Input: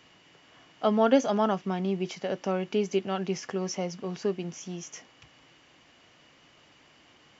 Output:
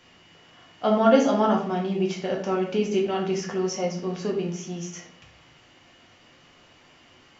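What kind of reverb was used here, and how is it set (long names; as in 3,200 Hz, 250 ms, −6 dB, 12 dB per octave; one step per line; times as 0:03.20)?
rectangular room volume 79 cubic metres, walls mixed, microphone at 0.89 metres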